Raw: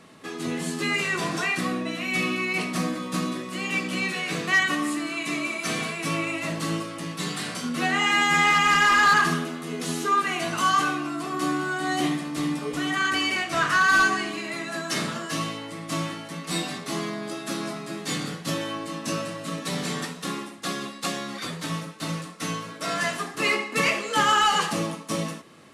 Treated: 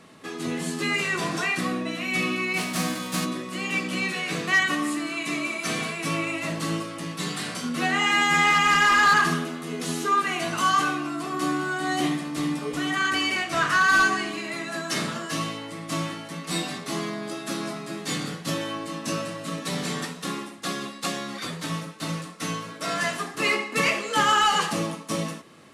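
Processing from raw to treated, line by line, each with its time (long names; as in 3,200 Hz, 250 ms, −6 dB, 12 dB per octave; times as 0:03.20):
0:02.56–0:03.24: spectral envelope flattened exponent 0.6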